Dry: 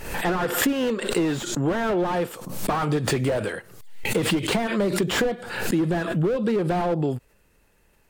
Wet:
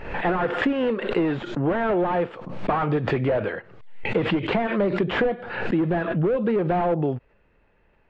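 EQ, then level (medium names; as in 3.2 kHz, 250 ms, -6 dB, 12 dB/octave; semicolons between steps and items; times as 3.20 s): tape spacing loss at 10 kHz 45 dB; peaking EQ 670 Hz +4 dB 1.5 oct; peaking EQ 2.5 kHz +9.5 dB 1.9 oct; 0.0 dB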